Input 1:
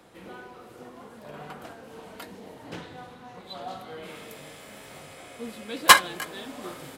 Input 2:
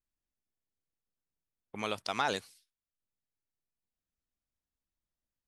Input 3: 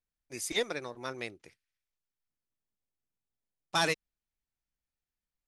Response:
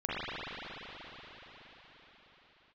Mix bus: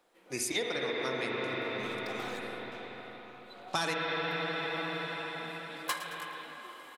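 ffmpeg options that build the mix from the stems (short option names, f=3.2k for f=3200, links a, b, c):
-filter_complex "[0:a]highpass=380,asoftclip=type=tanh:threshold=-6dB,volume=-14.5dB,asplit=3[a][b][c];[b]volume=-15.5dB[d];[c]volume=-13dB[e];[1:a]aecho=1:1:4:0.65,volume=33.5dB,asoftclip=hard,volume=-33.5dB,volume=-10.5dB,asplit=2[f][g];[g]volume=-5.5dB[h];[2:a]highpass=100,volume=3dB,asplit=3[i][j][k];[j]volume=-4dB[l];[k]volume=-22.5dB[m];[3:a]atrim=start_sample=2205[n];[d][h][l]amix=inputs=3:normalize=0[o];[o][n]afir=irnorm=-1:irlink=0[p];[e][m]amix=inputs=2:normalize=0,aecho=0:1:109|218|327|436|545|654:1|0.41|0.168|0.0689|0.0283|0.0116[q];[a][f][i][p][q]amix=inputs=5:normalize=0,acompressor=threshold=-31dB:ratio=4"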